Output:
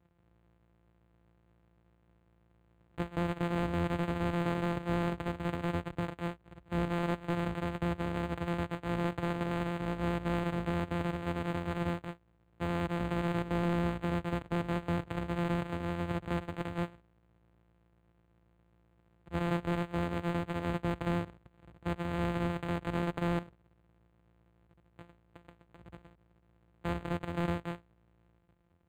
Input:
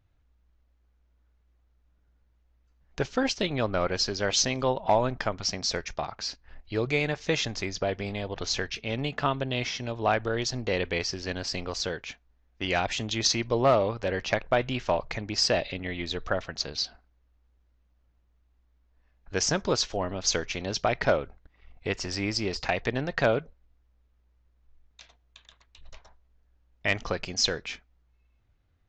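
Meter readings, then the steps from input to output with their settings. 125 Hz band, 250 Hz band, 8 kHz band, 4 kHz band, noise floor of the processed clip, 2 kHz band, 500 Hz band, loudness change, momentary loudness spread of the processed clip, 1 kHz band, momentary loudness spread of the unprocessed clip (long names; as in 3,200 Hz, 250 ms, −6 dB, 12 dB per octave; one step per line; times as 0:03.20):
+0.5 dB, +0.5 dB, below −20 dB, −18.0 dB, −69 dBFS, −9.0 dB, −8.5 dB, −6.0 dB, 6 LU, −6.0 dB, 9 LU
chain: samples sorted by size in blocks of 256 samples
high-pass filter 54 Hz 24 dB per octave
brickwall limiter −17 dBFS, peak gain reduction 9.5 dB
soft clipping −20 dBFS, distortion −17 dB
pitch vibrato 9.7 Hz 6.6 cents
linearly interpolated sample-rate reduction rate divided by 8×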